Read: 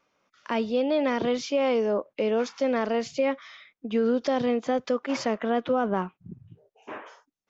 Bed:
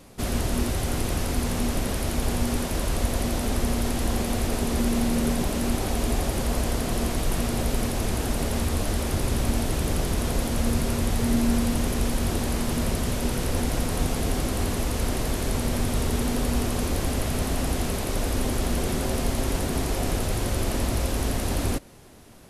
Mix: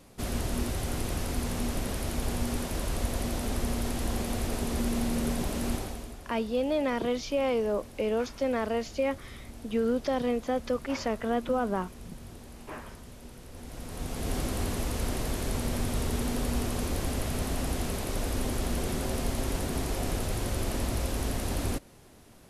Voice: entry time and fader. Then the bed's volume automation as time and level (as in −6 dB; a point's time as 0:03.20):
5.80 s, −3.5 dB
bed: 0:05.74 −5.5 dB
0:06.19 −21 dB
0:13.50 −21 dB
0:14.35 −5 dB